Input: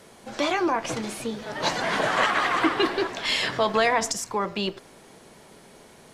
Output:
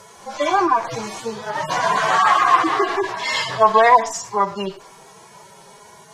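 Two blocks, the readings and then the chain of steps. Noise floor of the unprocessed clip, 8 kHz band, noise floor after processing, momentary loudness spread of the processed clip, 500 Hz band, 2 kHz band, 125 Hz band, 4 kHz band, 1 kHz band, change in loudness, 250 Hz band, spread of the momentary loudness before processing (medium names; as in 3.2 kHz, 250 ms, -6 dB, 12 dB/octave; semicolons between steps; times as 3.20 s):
-51 dBFS, +2.0 dB, -46 dBFS, 15 LU, +5.5 dB, +3.5 dB, +2.0 dB, 0.0 dB, +10.5 dB, +7.0 dB, 0.0 dB, 9 LU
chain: harmonic-percussive separation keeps harmonic; fifteen-band graphic EQ 250 Hz -11 dB, 1 kHz +10 dB, 6.3 kHz +7 dB; trim +6.5 dB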